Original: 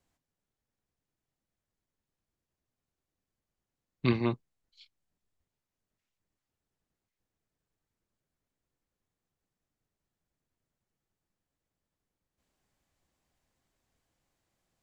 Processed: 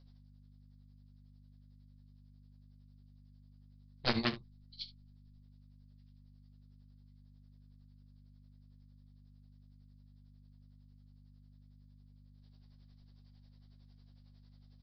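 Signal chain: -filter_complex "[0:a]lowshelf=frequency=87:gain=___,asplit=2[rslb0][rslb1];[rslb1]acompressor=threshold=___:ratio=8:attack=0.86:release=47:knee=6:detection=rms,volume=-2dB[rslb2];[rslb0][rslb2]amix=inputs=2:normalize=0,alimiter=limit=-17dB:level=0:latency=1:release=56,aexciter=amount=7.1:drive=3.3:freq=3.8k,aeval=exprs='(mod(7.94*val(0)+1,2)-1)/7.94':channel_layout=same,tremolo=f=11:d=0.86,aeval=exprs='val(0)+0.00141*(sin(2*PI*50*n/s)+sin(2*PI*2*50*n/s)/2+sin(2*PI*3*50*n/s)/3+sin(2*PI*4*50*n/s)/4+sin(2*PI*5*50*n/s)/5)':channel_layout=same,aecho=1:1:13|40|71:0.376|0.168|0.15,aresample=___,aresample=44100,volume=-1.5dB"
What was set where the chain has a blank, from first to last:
9.5, -34dB, 11025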